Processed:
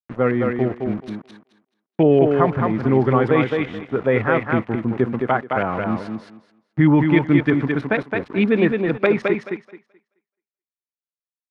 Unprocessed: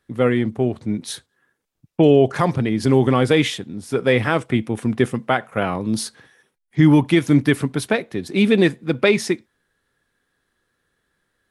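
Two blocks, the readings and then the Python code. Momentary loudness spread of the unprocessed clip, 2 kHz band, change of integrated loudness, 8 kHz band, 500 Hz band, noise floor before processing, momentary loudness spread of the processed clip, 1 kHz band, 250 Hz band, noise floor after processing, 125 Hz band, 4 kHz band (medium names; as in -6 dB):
12 LU, -0.5 dB, -0.5 dB, under -25 dB, 0.0 dB, -75 dBFS, 11 LU, +2.0 dB, -0.5 dB, under -85 dBFS, -1.0 dB, -10.5 dB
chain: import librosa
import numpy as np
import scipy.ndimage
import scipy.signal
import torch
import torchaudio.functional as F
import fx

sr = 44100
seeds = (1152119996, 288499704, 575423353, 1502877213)

y = np.where(np.abs(x) >= 10.0 ** (-31.5 / 20.0), x, 0.0)
y = fx.filter_lfo_lowpass(y, sr, shape='saw_up', hz=6.4, low_hz=990.0, high_hz=2400.0, q=1.4)
y = fx.echo_thinned(y, sr, ms=215, feedback_pct=21, hz=170.0, wet_db=-3.5)
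y = y * librosa.db_to_amplitude(-2.0)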